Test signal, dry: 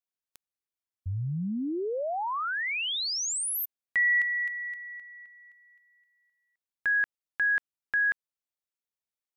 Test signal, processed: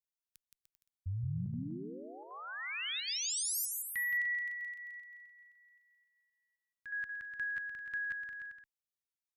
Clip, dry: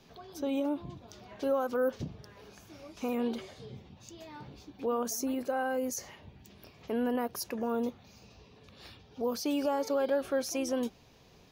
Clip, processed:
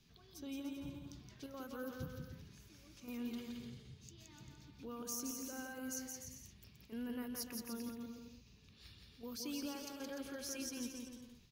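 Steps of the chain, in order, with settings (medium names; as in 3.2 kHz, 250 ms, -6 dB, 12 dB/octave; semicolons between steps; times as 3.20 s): amplifier tone stack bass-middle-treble 6-0-2; square tremolo 1.3 Hz, depth 60%, duty 90%; on a send: bouncing-ball echo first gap 170 ms, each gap 0.75×, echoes 5; on the sum: trim +8 dB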